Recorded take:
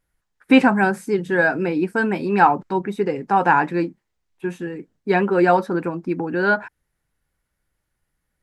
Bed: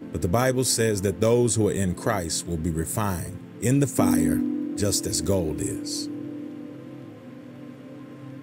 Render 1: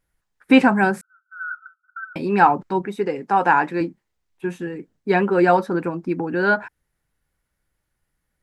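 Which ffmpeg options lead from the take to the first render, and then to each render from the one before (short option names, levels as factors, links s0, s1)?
-filter_complex "[0:a]asettb=1/sr,asplit=3[s0][s1][s2];[s0]atrim=end=1.014[s3];[s1]atrim=start=1.01:end=2.16,asetpts=PTS-STARTPTS,afade=t=in:d=0.004:c=qsin,afade=t=out:st=1.146:d=0.004:c=qsin,asuperpass=centerf=1400:order=20:qfactor=5.4[s4];[s2]atrim=start=2.156[s5];[s3][s4]acrossfade=d=0.004:c1=hsin:c2=qsin[s6];[s6][s5]acrossfade=d=0.004:c1=qsin:c2=hsin,asettb=1/sr,asplit=3[s7][s8][s9];[s7]atrim=end=2.854[s10];[s8]atrim=start=2.85:end=3.81,asetpts=PTS-STARTPTS,afade=t=in:d=0.004:c=qsin,afade=t=out:st=0.956:d=0.004:c=qsin,highpass=f=240:p=1[s11];[s9]atrim=start=3.806[s12];[s10][s11]acrossfade=d=0.004:c1=hsin:c2=qsin[s13];[s13][s12]acrossfade=d=0.004:c1=qsin:c2=hsin"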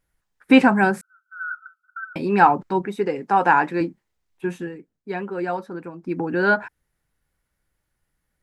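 -filter_complex "[0:a]asplit=3[s0][s1][s2];[s0]atrim=end=4.83,asetpts=PTS-STARTPTS,afade=t=out:st=4.58:d=0.25:silence=0.298538[s3];[s1]atrim=start=4.83:end=5.97,asetpts=PTS-STARTPTS,volume=0.299[s4];[s2]atrim=start=5.97,asetpts=PTS-STARTPTS,afade=t=in:d=0.25:silence=0.298538[s5];[s3][s4][s5]concat=n=3:v=0:a=1"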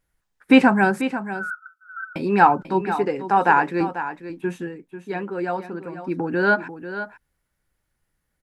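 -af "aecho=1:1:492:0.266"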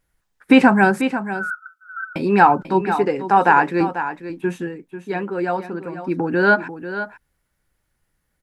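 -af "volume=1.5,alimiter=limit=0.794:level=0:latency=1"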